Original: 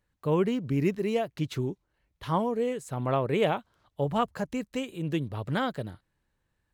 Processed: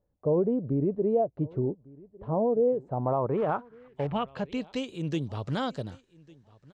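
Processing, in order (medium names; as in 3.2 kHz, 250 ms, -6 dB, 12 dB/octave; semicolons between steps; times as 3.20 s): dynamic bell 1.9 kHz, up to -7 dB, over -49 dBFS, Q 1.6; peak limiter -21 dBFS, peak gain reduction 5.5 dB; on a send: feedback delay 1152 ms, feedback 17%, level -23.5 dB; 3.37–4.07 s: on the sum: short-mantissa float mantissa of 2-bit; low-pass sweep 600 Hz -> 6 kHz, 2.74–5.02 s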